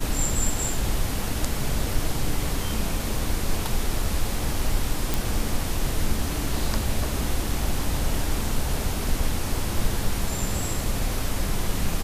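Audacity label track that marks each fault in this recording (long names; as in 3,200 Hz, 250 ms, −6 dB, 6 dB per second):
5.140000	5.140000	click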